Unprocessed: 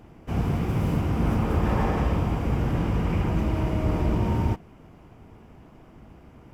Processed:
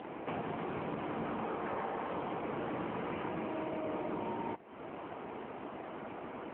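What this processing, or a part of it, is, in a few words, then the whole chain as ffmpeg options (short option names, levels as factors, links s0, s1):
voicemail: -af "highpass=390,lowpass=2800,acompressor=threshold=0.00355:ratio=6,volume=4.47" -ar 8000 -c:a libopencore_amrnb -b:a 7950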